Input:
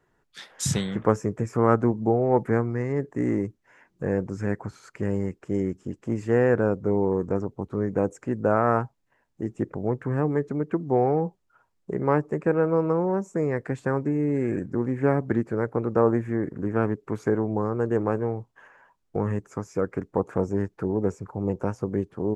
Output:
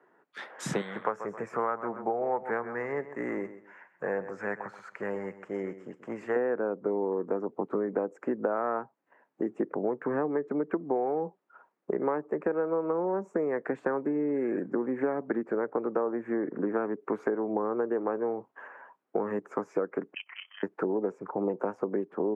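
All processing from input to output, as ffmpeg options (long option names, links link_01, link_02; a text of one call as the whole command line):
ffmpeg -i in.wav -filter_complex "[0:a]asettb=1/sr,asplit=3[link_01][link_02][link_03];[link_01]atrim=end=0.814[link_04];[link_02]atrim=start=0.81:end=6.36,asetpts=PTS-STARTPTS,afade=type=in:duration=0.004:curve=qsin,afade=type=out:start_time=5.546:duration=0.004:curve=qsin,equalizer=frequency=290:width_type=o:width=1.8:gain=-15,aecho=1:1:132|264|396:0.2|0.0519|0.0135,atrim=end_sample=244755[link_05];[link_03]atrim=start=6.356[link_06];[link_04][link_05]acrossfade=duration=0.004:curve1=hsin:curve2=qsin[link_07];[link_07][link_06]acrossfade=duration=0.004:curve1=qsin:curve2=hsin,asettb=1/sr,asplit=3[link_08][link_09][link_10];[link_08]atrim=end=20.144[link_11];[link_09]atrim=start=20.14:end=20.63,asetpts=PTS-STARTPTS,afade=type=in:duration=0.004:curve=qsin,afade=type=out:start_time=0.486:duration=0.004:curve=qsin,highpass=1100,tremolo=f=32:d=0.71,lowpass=frequency=3000:width_type=q:width=0.5098,lowpass=frequency=3000:width_type=q:width=0.6013,lowpass=frequency=3000:width_type=q:width=0.9,lowpass=frequency=3000:width_type=q:width=2.563,afreqshift=-3500[link_12];[link_10]atrim=start=20.626[link_13];[link_11][link_12]acrossfade=duration=0.004:curve1=hsin:curve2=qsin[link_14];[link_14][link_13]acrossfade=duration=0.004:curve1=qsin:curve2=hsin,highpass=frequency=170:width=0.5412,highpass=frequency=170:width=1.3066,acrossover=split=270 2100:gain=0.224 1 0.0891[link_15][link_16][link_17];[link_15][link_16][link_17]amix=inputs=3:normalize=0,acompressor=threshold=-33dB:ratio=10,volume=7.5dB" out.wav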